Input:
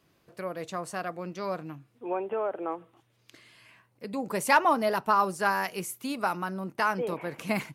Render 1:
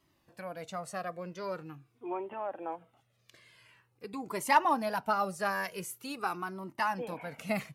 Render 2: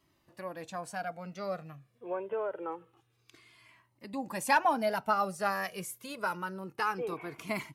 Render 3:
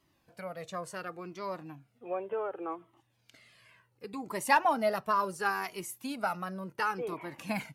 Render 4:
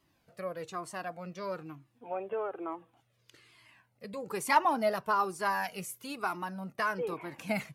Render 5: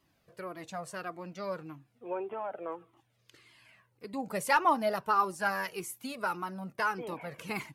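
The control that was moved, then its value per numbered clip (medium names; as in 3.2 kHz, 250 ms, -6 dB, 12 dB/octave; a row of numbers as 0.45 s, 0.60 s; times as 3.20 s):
Shepard-style flanger, rate: 0.45 Hz, 0.26 Hz, 0.69 Hz, 1.1 Hz, 1.7 Hz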